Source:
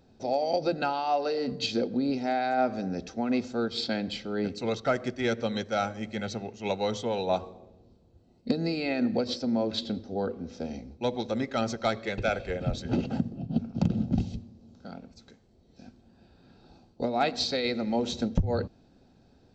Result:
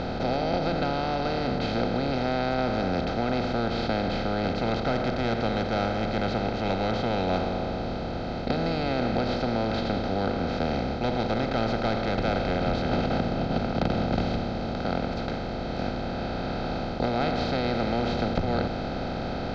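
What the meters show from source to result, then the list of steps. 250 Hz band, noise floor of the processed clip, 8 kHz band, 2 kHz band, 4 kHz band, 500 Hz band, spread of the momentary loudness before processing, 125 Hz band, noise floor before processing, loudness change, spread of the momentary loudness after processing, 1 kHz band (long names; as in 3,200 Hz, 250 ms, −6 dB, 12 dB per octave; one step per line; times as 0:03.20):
+2.5 dB, −31 dBFS, can't be measured, +4.0 dB, +1.0 dB, +3.0 dB, 7 LU, +5.5 dB, −61 dBFS, +2.5 dB, 5 LU, +4.0 dB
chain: compressor on every frequency bin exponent 0.2
high-frequency loss of the air 180 metres
level −7.5 dB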